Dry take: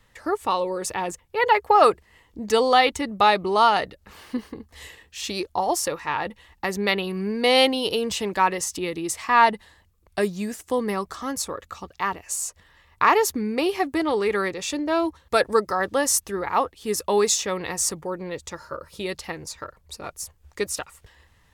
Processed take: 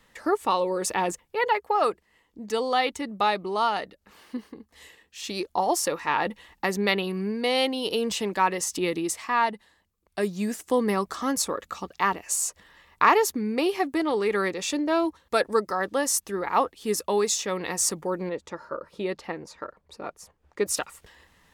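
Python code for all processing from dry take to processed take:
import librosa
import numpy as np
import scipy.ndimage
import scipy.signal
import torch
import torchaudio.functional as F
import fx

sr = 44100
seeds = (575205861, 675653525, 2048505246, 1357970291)

y = fx.chain(x, sr, fx.lowpass(hz=1200.0, slope=6),
    fx.low_shelf(hz=160.0, db=-7.5), at=(18.29, 20.66))
y = fx.low_shelf_res(y, sr, hz=150.0, db=-7.0, q=1.5)
y = fx.rider(y, sr, range_db=5, speed_s=0.5)
y = F.gain(torch.from_numpy(y), -3.0).numpy()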